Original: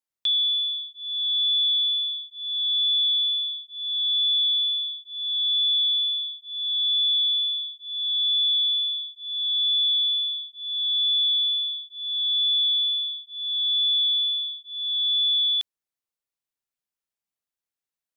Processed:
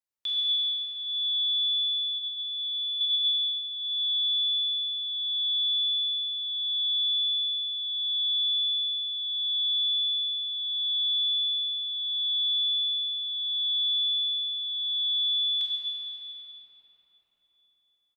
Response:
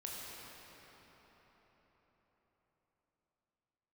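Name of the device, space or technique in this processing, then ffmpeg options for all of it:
cathedral: -filter_complex "[0:a]bandreject=f=3300:w=17,asettb=1/sr,asplit=3[s0][s1][s2];[s0]atrim=end=2.144[s3];[s1]atrim=start=2.14:end=3.01,asetpts=PTS-STARTPTS,afade=t=in:d=0.004:c=qsin,afade=t=out:st=0.866:d=0.004:c=qsin,aderivative[s4];[s2]atrim=start=3.006[s5];[s3][s4]acrossfade=d=0.004:c1=hsin:c2=qsin[s6];[s6][s5]acrossfade=d=0.004:c1=qsin:c2=hsin,asplit=2[s7][s8];[s8]adelay=48,volume=0.266[s9];[s7][s9]amix=inputs=2:normalize=0[s10];[1:a]atrim=start_sample=2205[s11];[s10][s11]afir=irnorm=-1:irlink=0"

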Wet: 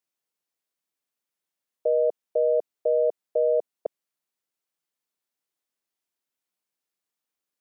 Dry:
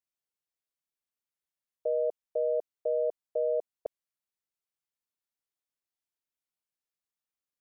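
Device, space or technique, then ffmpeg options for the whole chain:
filter by subtraction: -filter_complex "[0:a]asplit=2[s0][s1];[s1]lowpass=280,volume=-1[s2];[s0][s2]amix=inputs=2:normalize=0,volume=1.78"

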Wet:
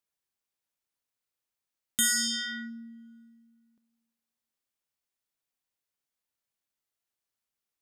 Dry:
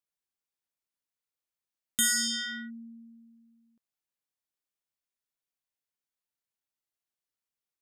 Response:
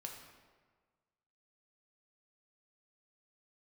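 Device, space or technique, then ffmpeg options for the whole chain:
ducked reverb: -filter_complex "[0:a]asplit=3[s0][s1][s2];[1:a]atrim=start_sample=2205[s3];[s1][s3]afir=irnorm=-1:irlink=0[s4];[s2]apad=whole_len=344560[s5];[s4][s5]sidechaincompress=threshold=0.00631:ratio=8:attack=16:release=577,volume=0.631[s6];[s0][s6]amix=inputs=2:normalize=0"

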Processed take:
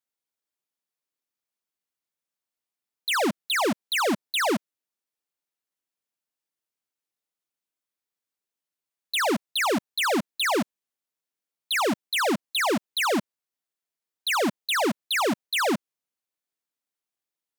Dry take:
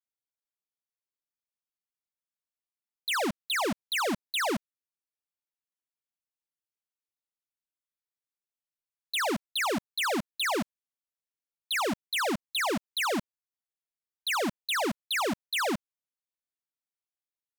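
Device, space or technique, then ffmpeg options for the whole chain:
filter by subtraction: -filter_complex "[0:a]asplit=2[s0][s1];[s1]lowpass=270,volume=-1[s2];[s0][s2]amix=inputs=2:normalize=0,volume=1.58"

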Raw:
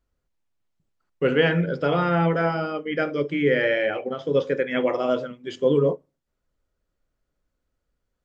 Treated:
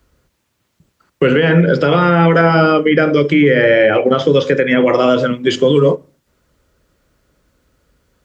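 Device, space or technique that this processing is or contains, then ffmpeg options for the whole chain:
mastering chain: -filter_complex "[0:a]highpass=53,equalizer=f=740:t=o:w=0.4:g=-4,acrossover=split=180|1400[s0][s1][s2];[s0]acompressor=threshold=0.0126:ratio=4[s3];[s1]acompressor=threshold=0.0355:ratio=4[s4];[s2]acompressor=threshold=0.0112:ratio=4[s5];[s3][s4][s5]amix=inputs=3:normalize=0,acompressor=threshold=0.0355:ratio=2,alimiter=level_in=13.3:limit=0.891:release=50:level=0:latency=1,volume=0.891"

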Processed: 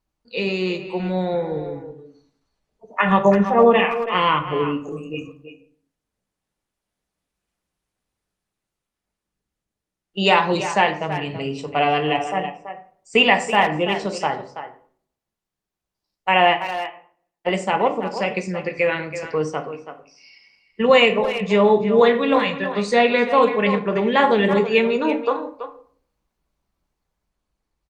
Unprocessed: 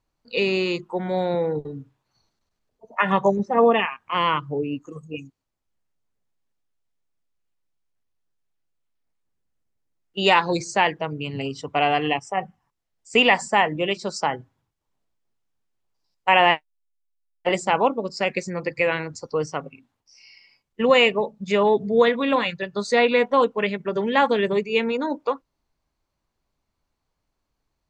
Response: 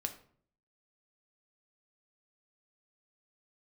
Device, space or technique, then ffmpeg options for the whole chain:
speakerphone in a meeting room: -filter_complex "[1:a]atrim=start_sample=2205[s0];[0:a][s0]afir=irnorm=-1:irlink=0,asplit=2[s1][s2];[s2]adelay=330,highpass=300,lowpass=3400,asoftclip=type=hard:threshold=0.299,volume=0.316[s3];[s1][s3]amix=inputs=2:normalize=0,dynaudnorm=f=680:g=7:m=5.31,volume=0.891" -ar 48000 -c:a libopus -b:a 32k

